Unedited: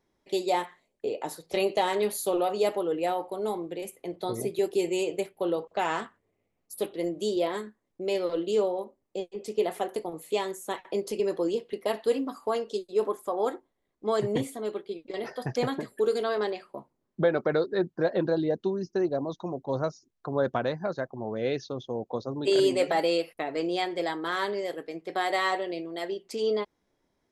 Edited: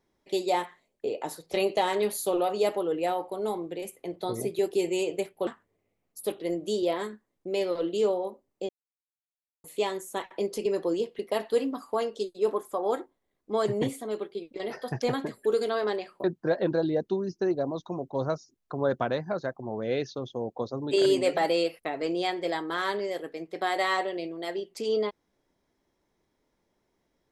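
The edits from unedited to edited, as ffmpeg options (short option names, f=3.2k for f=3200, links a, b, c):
-filter_complex "[0:a]asplit=5[a][b][c][d][e];[a]atrim=end=5.472[f];[b]atrim=start=6.008:end=9.23,asetpts=PTS-STARTPTS,afade=t=out:st=3.218:d=0.004:c=hsin[g];[c]atrim=start=9.23:end=10.18,asetpts=PTS-STARTPTS,volume=0[h];[d]atrim=start=10.18:end=16.782,asetpts=PTS-STARTPTS,afade=t=in:d=0.004:c=hsin[i];[e]atrim=start=17.778[j];[g][h][i]concat=n=3:v=0:a=1[k];[f][k]acrossfade=d=0.004:c1=hsin:c2=hsin[l];[l][j]acrossfade=d=0.004:c1=hsin:c2=hsin"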